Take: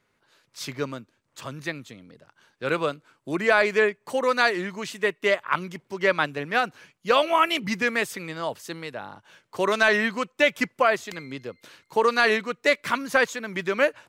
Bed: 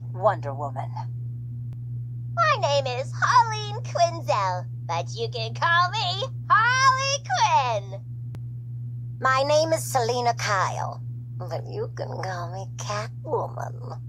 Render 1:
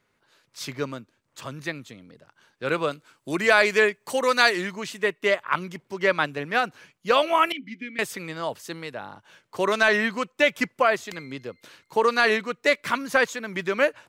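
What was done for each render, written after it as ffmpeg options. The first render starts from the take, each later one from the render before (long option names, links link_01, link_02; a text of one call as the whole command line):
ffmpeg -i in.wav -filter_complex "[0:a]asettb=1/sr,asplit=3[link_01][link_02][link_03];[link_01]atrim=end=2.914[link_04];[link_02]atrim=start=2.91:end=4.71,asetpts=PTS-STARTPTS,afade=type=in:duration=0.004:curve=qsin,afade=type=out:start_time=1.796:duration=0.004:curve=qsin,highshelf=frequency=2700:gain=8.5[link_05];[link_03]atrim=start=4.706[link_06];[link_04][link_05]acrossfade=duration=0.004:curve1=hsin:curve2=qsin[link_07];[link_07][link_06]acrossfade=duration=0.004:curve1=qsin:curve2=hsin,asettb=1/sr,asplit=3[link_08][link_09][link_10];[link_08]atrim=end=7.524[link_11];[link_09]atrim=start=7.52:end=7.99,asetpts=PTS-STARTPTS,afade=type=in:duration=0.004:curve=qsin,afade=type=out:start_time=0.466:duration=0.004:curve=qsin,asplit=3[link_12][link_13][link_14];[link_12]bandpass=frequency=270:width_type=q:width=8,volume=0dB[link_15];[link_13]bandpass=frequency=2290:width_type=q:width=8,volume=-6dB[link_16];[link_14]bandpass=frequency=3010:width_type=q:width=8,volume=-9dB[link_17];[link_15][link_16][link_17]amix=inputs=3:normalize=0[link_18];[link_10]atrim=start=7.986[link_19];[link_11][link_18]acrossfade=duration=0.004:curve1=hsin:curve2=qsin[link_20];[link_20][link_19]acrossfade=duration=0.004:curve1=qsin:curve2=hsin" out.wav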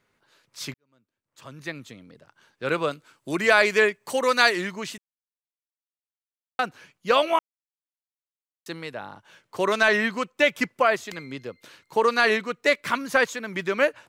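ffmpeg -i in.wav -filter_complex "[0:a]asplit=6[link_01][link_02][link_03][link_04][link_05][link_06];[link_01]atrim=end=0.74,asetpts=PTS-STARTPTS,afade=type=out:start_time=0.736:duration=0.004:curve=hsin[link_07];[link_02]atrim=start=0.74:end=4.98,asetpts=PTS-STARTPTS,afade=type=in:duration=1.11:curve=qua,afade=type=out:start_time=4.236:duration=0.004:curve=hsin[link_08];[link_03]atrim=start=4.98:end=6.59,asetpts=PTS-STARTPTS,volume=0[link_09];[link_04]atrim=start=6.59:end=7.39,asetpts=PTS-STARTPTS,afade=type=in:duration=0.004:curve=hsin,afade=type=out:start_time=0.796:duration=0.004:curve=hsin[link_10];[link_05]atrim=start=7.39:end=8.66,asetpts=PTS-STARTPTS,volume=0[link_11];[link_06]atrim=start=8.66,asetpts=PTS-STARTPTS,afade=type=in:duration=0.004:curve=hsin[link_12];[link_07][link_08][link_09][link_10][link_11][link_12]concat=n=6:v=0:a=1" out.wav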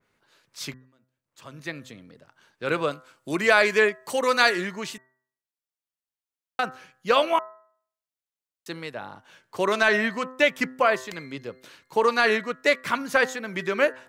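ffmpeg -i in.wav -af "bandreject=frequency=128.7:width_type=h:width=4,bandreject=frequency=257.4:width_type=h:width=4,bandreject=frequency=386.1:width_type=h:width=4,bandreject=frequency=514.8:width_type=h:width=4,bandreject=frequency=643.5:width_type=h:width=4,bandreject=frequency=772.2:width_type=h:width=4,bandreject=frequency=900.9:width_type=h:width=4,bandreject=frequency=1029.6:width_type=h:width=4,bandreject=frequency=1158.3:width_type=h:width=4,bandreject=frequency=1287:width_type=h:width=4,bandreject=frequency=1415.7:width_type=h:width=4,bandreject=frequency=1544.4:width_type=h:width=4,bandreject=frequency=1673.1:width_type=h:width=4,bandreject=frequency=1801.8:width_type=h:width=4,bandreject=frequency=1930.5:width_type=h:width=4,adynamicequalizer=threshold=0.0282:dfrequency=2300:dqfactor=0.7:tfrequency=2300:tqfactor=0.7:attack=5:release=100:ratio=0.375:range=1.5:mode=cutabove:tftype=highshelf" out.wav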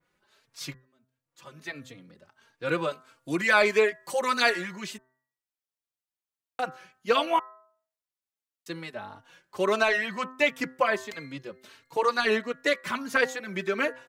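ffmpeg -i in.wav -filter_complex "[0:a]asplit=2[link_01][link_02];[link_02]adelay=3.7,afreqshift=1.5[link_03];[link_01][link_03]amix=inputs=2:normalize=1" out.wav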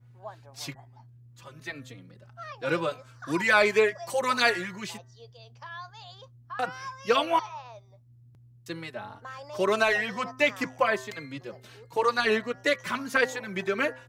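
ffmpeg -i in.wav -i bed.wav -filter_complex "[1:a]volume=-21dB[link_01];[0:a][link_01]amix=inputs=2:normalize=0" out.wav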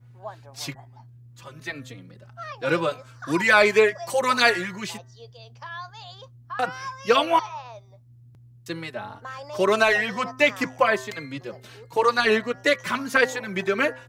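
ffmpeg -i in.wav -af "volume=4.5dB,alimiter=limit=-3dB:level=0:latency=1" out.wav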